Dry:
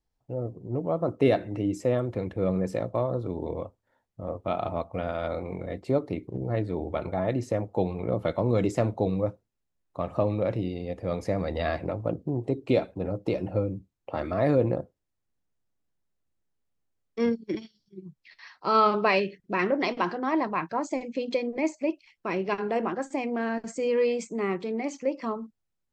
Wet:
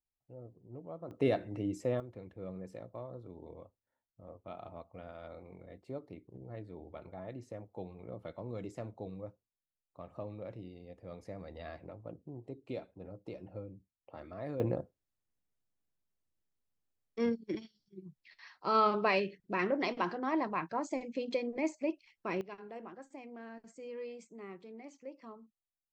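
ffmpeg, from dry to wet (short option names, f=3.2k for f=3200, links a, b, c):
-af "asetnsamples=n=441:p=0,asendcmd='1.11 volume volume -8dB;2 volume volume -17.5dB;14.6 volume volume -6.5dB;22.41 volume volume -19dB',volume=-18dB"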